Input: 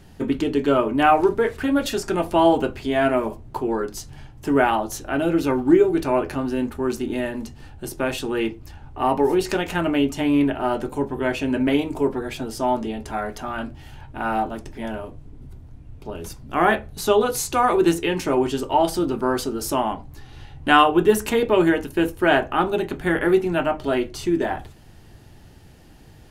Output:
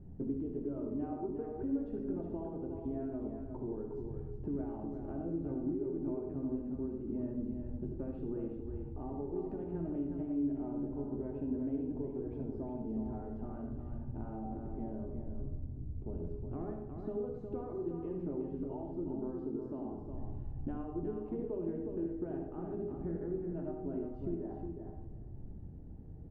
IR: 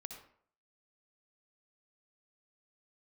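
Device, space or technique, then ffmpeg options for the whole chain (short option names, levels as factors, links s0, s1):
television next door: -filter_complex "[0:a]asettb=1/sr,asplit=3[s0][s1][s2];[s0]atrim=end=19.364[s3];[s1]atrim=start=19.36:end=19.79,asetpts=PTS-STARTPTS,afade=t=in:d=0.004:c=qsin,afade=t=out:st=0.426:d=0.004:c=qsin,highpass=140[s4];[s2]atrim=start=19.786[s5];[s3][s4]acrossfade=d=0.004:c1=hsin:c2=qsin[s6];[s6][s5]acrossfade=d=0.004:c1=qsin:c2=hsin,acompressor=threshold=0.0224:ratio=4,lowpass=350[s7];[1:a]atrim=start_sample=2205[s8];[s7][s8]afir=irnorm=-1:irlink=0,aecho=1:1:362|724|1086:0.501|0.0852|0.0145,volume=1.33"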